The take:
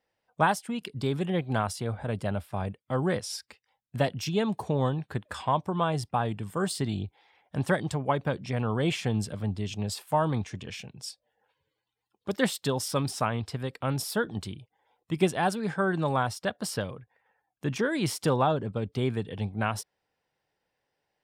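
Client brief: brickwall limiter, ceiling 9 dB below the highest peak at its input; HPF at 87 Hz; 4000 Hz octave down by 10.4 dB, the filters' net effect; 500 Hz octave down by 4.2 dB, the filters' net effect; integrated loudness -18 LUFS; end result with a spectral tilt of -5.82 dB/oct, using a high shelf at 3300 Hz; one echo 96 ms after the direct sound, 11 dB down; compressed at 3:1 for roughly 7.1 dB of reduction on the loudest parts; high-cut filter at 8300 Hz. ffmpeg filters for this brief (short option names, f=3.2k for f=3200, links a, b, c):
-af "highpass=87,lowpass=8.3k,equalizer=f=500:t=o:g=-5,highshelf=f=3.3k:g=-9,equalizer=f=4k:t=o:g=-7,acompressor=threshold=-31dB:ratio=3,alimiter=level_in=3dB:limit=-24dB:level=0:latency=1,volume=-3dB,aecho=1:1:96:0.282,volume=20.5dB"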